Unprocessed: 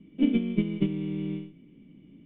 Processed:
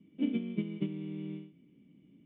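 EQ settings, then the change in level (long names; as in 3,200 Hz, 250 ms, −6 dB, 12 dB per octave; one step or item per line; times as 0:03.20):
high-pass filter 79 Hz
−8.0 dB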